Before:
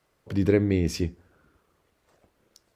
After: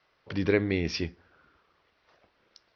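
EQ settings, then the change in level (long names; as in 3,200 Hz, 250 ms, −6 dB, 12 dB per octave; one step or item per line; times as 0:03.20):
Butterworth low-pass 5,700 Hz 72 dB per octave
high-frequency loss of the air 90 metres
tilt shelving filter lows −7 dB, about 650 Hz
0.0 dB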